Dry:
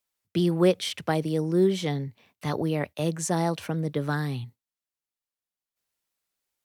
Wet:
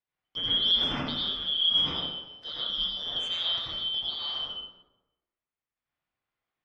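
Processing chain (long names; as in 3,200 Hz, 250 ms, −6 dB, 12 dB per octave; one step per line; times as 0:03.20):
band-splitting scrambler in four parts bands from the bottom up 3412
low-pass filter 2,800 Hz 12 dB per octave
convolution reverb RT60 1.0 s, pre-delay 79 ms, DRR −8.5 dB
level −6 dB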